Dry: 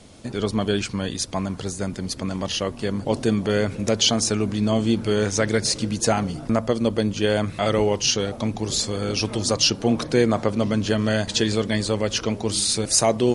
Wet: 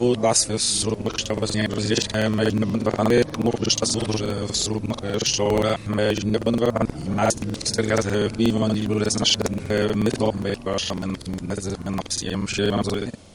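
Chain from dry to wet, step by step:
played backwards from end to start
regular buffer underruns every 0.12 s, samples 2,048, repeat, from 0:00.61

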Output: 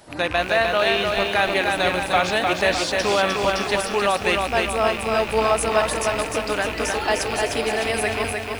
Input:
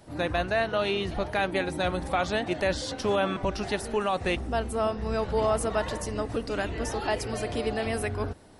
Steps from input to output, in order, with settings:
loose part that buzzes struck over −33 dBFS, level −26 dBFS
low-shelf EQ 390 Hz −11 dB
feedback echo at a low word length 304 ms, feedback 55%, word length 9 bits, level −3.5 dB
level +8.5 dB

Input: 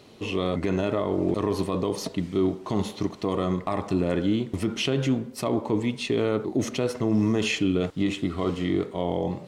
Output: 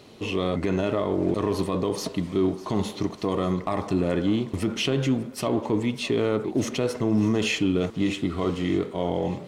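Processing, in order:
in parallel at −12 dB: hard clipping −32.5 dBFS, distortion −3 dB
on the sum: feedback echo with a high-pass in the loop 599 ms, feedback 56%, level −18 dB

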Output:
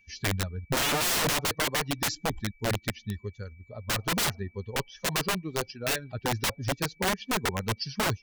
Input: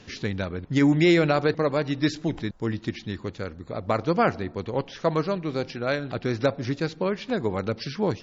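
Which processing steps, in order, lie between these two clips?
spectral dynamics exaggerated over time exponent 2
wrap-around overflow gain 27.5 dB
steady tone 2,300 Hz −66 dBFS
level +6 dB

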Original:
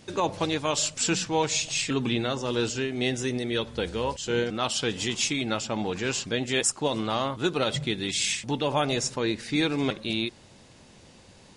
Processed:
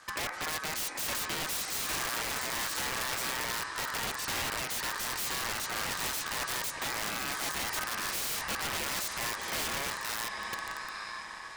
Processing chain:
tuned comb filter 370 Hz, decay 0.42 s, harmonics all, mix 30%
on a send: feedback delay with all-pass diffusion 854 ms, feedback 50%, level −11 dB
on the sum: brickwall limiter −23 dBFS, peak gain reduction 8 dB
wrap-around overflow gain 29.5 dB
ring modulation 1,400 Hz
level +4 dB

